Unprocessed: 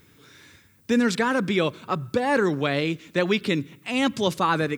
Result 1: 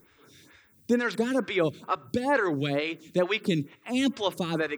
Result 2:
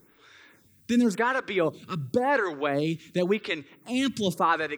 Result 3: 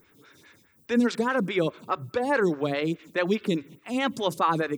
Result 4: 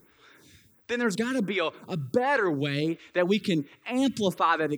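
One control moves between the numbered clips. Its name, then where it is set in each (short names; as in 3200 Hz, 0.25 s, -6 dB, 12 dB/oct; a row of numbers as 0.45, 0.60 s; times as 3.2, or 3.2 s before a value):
photocell phaser, rate: 2.2, 0.92, 4.8, 1.4 Hz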